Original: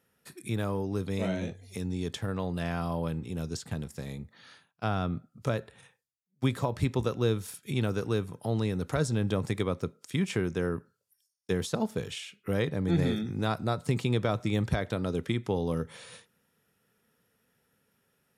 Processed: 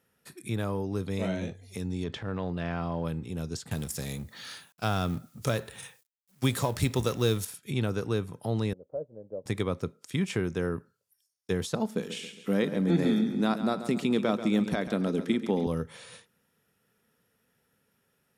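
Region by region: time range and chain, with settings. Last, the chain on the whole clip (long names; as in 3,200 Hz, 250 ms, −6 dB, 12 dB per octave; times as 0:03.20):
0:02.04–0:03.05: one scale factor per block 7 bits + low-pass filter 3,600 Hz + transient designer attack −6 dB, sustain +4 dB
0:03.71–0:07.45: mu-law and A-law mismatch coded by mu + high-shelf EQ 3,800 Hz +12 dB
0:08.73–0:09.46: transistor ladder low-pass 600 Hz, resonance 75% + low-shelf EQ 210 Hz −11.5 dB + expander for the loud parts, over −54 dBFS
0:11.87–0:15.67: low shelf with overshoot 150 Hz −11 dB, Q 3 + repeating echo 137 ms, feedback 48%, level −11.5 dB
whole clip: no processing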